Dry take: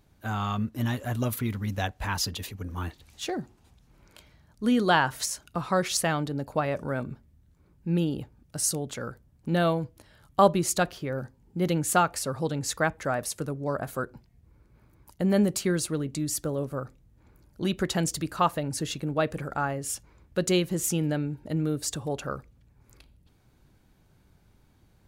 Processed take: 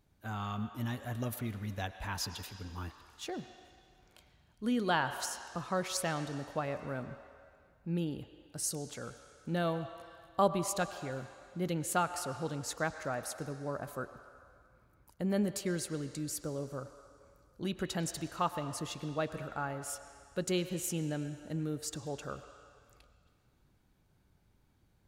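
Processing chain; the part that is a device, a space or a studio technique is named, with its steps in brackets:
filtered reverb send (on a send: high-pass filter 490 Hz 12 dB per octave + low-pass filter 5,600 Hz 12 dB per octave + convolution reverb RT60 2.1 s, pre-delay 92 ms, DRR 9.5 dB)
on the sum: level −8.5 dB

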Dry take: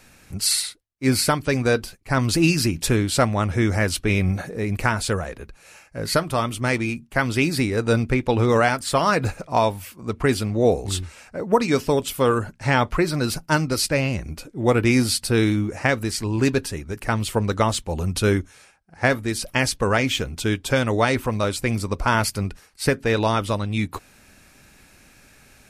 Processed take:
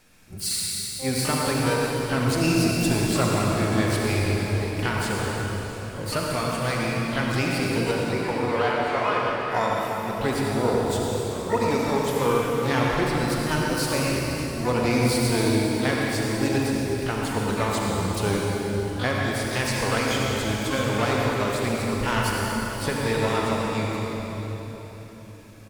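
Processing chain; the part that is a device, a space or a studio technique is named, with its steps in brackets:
0:07.91–0:09.41: three-way crossover with the lows and the highs turned down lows −15 dB, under 320 Hz, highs −22 dB, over 2,900 Hz
shimmer-style reverb (pitch-shifted copies added +12 semitones −8 dB; convolution reverb RT60 4.1 s, pre-delay 62 ms, DRR −3 dB)
double-tracking delay 40 ms −12 dB
level −8 dB

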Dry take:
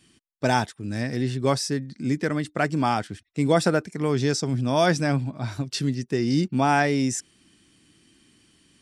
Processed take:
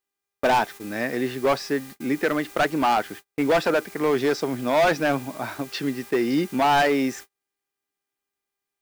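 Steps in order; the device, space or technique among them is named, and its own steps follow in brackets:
aircraft radio (band-pass filter 390–2,500 Hz; hard clipping −23 dBFS, distortion −8 dB; hum with harmonics 400 Hz, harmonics 6, −59 dBFS −1 dB per octave; white noise bed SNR 22 dB; noise gate −45 dBFS, range −41 dB)
level +7.5 dB

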